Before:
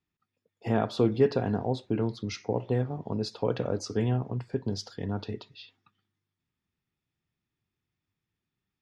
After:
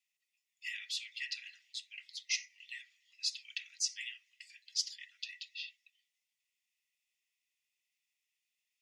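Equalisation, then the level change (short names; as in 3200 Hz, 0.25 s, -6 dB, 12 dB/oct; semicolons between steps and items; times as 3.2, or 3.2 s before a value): rippled Chebyshev high-pass 1900 Hz, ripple 6 dB; +8.5 dB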